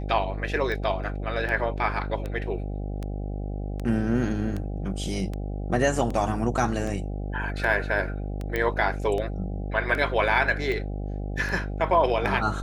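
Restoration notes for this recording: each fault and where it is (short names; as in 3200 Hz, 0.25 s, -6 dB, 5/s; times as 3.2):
buzz 50 Hz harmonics 16 -31 dBFS
tick 78 rpm -20 dBFS
8.56 pop -14 dBFS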